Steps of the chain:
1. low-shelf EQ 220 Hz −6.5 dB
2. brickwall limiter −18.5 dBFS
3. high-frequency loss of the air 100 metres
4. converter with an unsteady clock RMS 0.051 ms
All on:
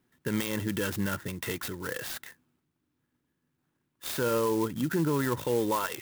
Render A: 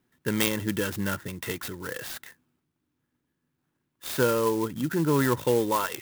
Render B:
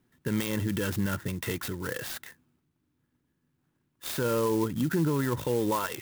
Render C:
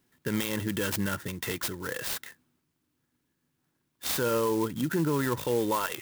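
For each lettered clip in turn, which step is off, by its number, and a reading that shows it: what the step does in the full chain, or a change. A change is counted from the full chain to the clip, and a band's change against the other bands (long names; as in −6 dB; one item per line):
2, average gain reduction 1.5 dB
1, 125 Hz band +3.5 dB
3, 8 kHz band +2.5 dB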